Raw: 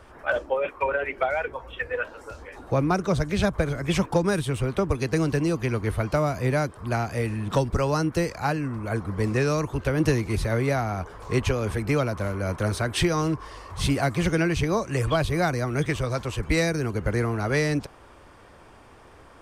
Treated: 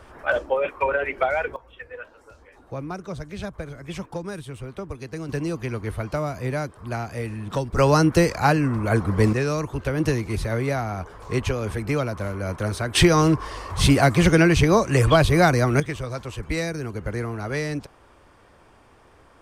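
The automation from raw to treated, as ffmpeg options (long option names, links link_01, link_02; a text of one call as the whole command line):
ffmpeg -i in.wav -af "asetnsamples=nb_out_samples=441:pad=0,asendcmd='1.56 volume volume -9.5dB;5.29 volume volume -3dB;7.77 volume volume 7dB;9.33 volume volume -0.5dB;12.95 volume volume 7dB;15.8 volume volume -3.5dB',volume=2.5dB" out.wav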